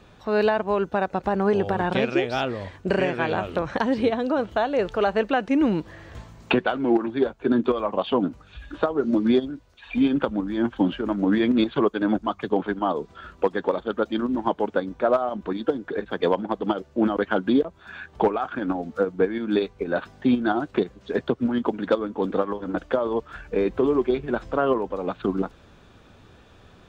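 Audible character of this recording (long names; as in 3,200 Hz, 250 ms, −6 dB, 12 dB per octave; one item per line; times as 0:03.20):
background noise floor −52 dBFS
spectral slope −5.0 dB per octave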